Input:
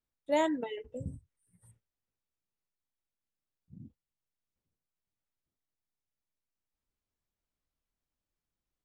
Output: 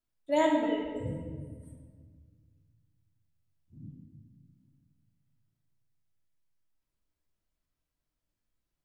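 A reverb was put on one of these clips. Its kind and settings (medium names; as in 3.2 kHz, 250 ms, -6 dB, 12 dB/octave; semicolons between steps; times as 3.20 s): simulated room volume 1900 m³, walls mixed, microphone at 2.9 m; trim -2.5 dB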